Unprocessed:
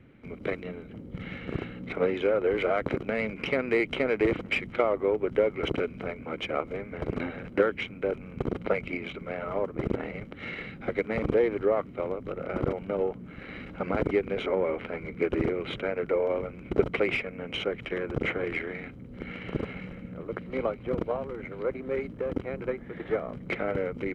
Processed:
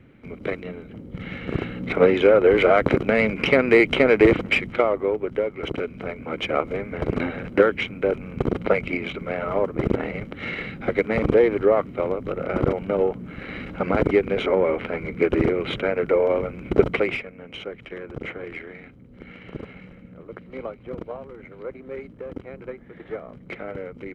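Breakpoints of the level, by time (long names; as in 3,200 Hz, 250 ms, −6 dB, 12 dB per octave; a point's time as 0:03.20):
0:01.13 +3.5 dB
0:02.01 +10 dB
0:04.26 +10 dB
0:05.52 −1 dB
0:06.54 +7 dB
0:16.90 +7 dB
0:17.34 −4 dB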